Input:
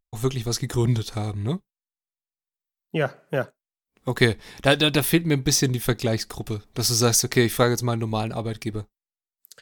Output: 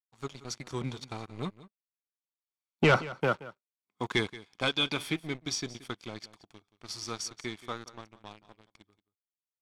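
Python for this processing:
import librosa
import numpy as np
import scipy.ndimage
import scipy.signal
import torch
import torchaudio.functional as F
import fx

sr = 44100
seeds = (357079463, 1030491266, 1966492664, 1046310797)

p1 = fx.doppler_pass(x, sr, speed_mps=15, closest_m=2.2, pass_at_s=2.69)
p2 = scipy.signal.sosfilt(scipy.signal.butter(2, 120.0, 'highpass', fs=sr, output='sos'), p1)
p3 = fx.low_shelf(p2, sr, hz=260.0, db=-12.0)
p4 = fx.notch(p3, sr, hz=1900.0, q=13.0)
p5 = p4 + 0.45 * np.pad(p4, (int(0.9 * sr / 1000.0), 0))[:len(p4)]
p6 = fx.leveller(p5, sr, passes=3)
p7 = fx.air_absorb(p6, sr, metres=80.0)
p8 = p7 + fx.echo_single(p7, sr, ms=177, db=-17.5, dry=0)
y = p8 * librosa.db_to_amplitude(5.0)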